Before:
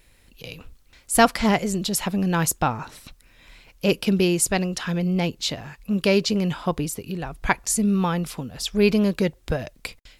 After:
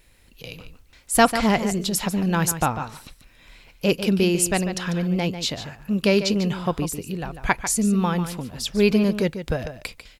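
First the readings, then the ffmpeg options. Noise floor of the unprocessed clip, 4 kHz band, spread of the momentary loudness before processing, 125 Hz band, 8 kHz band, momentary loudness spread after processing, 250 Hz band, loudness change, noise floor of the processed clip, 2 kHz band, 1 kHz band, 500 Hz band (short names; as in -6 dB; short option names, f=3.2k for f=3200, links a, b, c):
-57 dBFS, +0.5 dB, 14 LU, +0.5 dB, 0.0 dB, 13 LU, +0.5 dB, +0.5 dB, -54 dBFS, +0.5 dB, +0.5 dB, +0.5 dB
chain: -filter_complex "[0:a]asplit=2[a][b];[b]adelay=145.8,volume=-10dB,highshelf=f=4k:g=-3.28[c];[a][c]amix=inputs=2:normalize=0"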